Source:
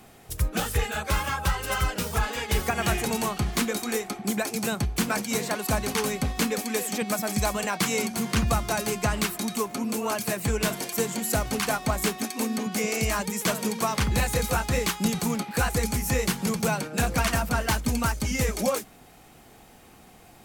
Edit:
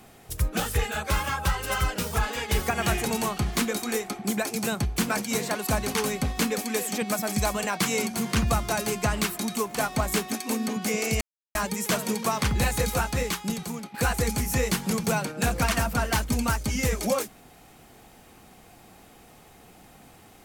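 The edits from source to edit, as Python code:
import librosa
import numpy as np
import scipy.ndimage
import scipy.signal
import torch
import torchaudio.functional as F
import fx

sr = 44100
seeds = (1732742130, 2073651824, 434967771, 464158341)

y = fx.edit(x, sr, fx.cut(start_s=9.75, length_s=1.9),
    fx.insert_silence(at_s=13.11, length_s=0.34),
    fx.fade_out_to(start_s=14.49, length_s=1.01, floor_db=-11.0), tone=tone)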